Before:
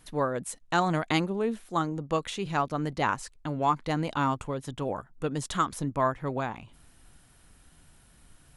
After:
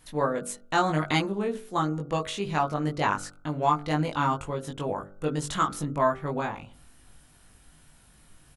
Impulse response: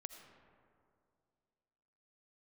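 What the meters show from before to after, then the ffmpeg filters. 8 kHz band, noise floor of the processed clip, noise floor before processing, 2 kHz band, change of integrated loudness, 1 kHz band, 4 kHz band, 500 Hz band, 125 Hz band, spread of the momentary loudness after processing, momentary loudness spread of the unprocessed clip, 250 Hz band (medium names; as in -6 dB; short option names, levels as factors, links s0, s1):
+2.0 dB, -57 dBFS, -59 dBFS, +1.5 dB, +1.5 dB, +2.0 dB, +2.0 dB, +2.0 dB, +2.0 dB, 7 LU, 7 LU, +1.0 dB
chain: -filter_complex "[0:a]asplit=2[s0][s1];[s1]adelay=20,volume=0.75[s2];[s0][s2]amix=inputs=2:normalize=0,bandreject=f=48.79:t=h:w=4,bandreject=f=97.58:t=h:w=4,bandreject=f=146.37:t=h:w=4,bandreject=f=195.16:t=h:w=4,bandreject=f=243.95:t=h:w=4,bandreject=f=292.74:t=h:w=4,bandreject=f=341.53:t=h:w=4,bandreject=f=390.32:t=h:w=4,bandreject=f=439.11:t=h:w=4,bandreject=f=487.9:t=h:w=4,bandreject=f=536.69:t=h:w=4,bandreject=f=585.48:t=h:w=4,bandreject=f=634.27:t=h:w=4,bandreject=f=683.06:t=h:w=4,bandreject=f=731.85:t=h:w=4,bandreject=f=780.64:t=h:w=4,bandreject=f=829.43:t=h:w=4,bandreject=f=878.22:t=h:w=4,bandreject=f=927.01:t=h:w=4,bandreject=f=975.8:t=h:w=4,bandreject=f=1024.59:t=h:w=4,bandreject=f=1073.38:t=h:w=4,bandreject=f=1122.17:t=h:w=4,bandreject=f=1170.96:t=h:w=4,bandreject=f=1219.75:t=h:w=4,bandreject=f=1268.54:t=h:w=4,bandreject=f=1317.33:t=h:w=4,bandreject=f=1366.12:t=h:w=4,bandreject=f=1414.91:t=h:w=4,bandreject=f=1463.7:t=h:w=4,bandreject=f=1512.49:t=h:w=4"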